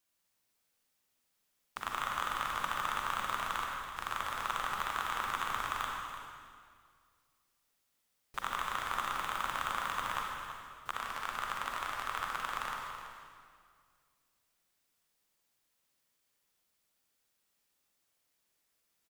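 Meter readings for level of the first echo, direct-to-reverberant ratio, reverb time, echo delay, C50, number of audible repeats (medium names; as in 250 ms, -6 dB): -12.0 dB, -1.5 dB, 2.0 s, 332 ms, -0.5 dB, 1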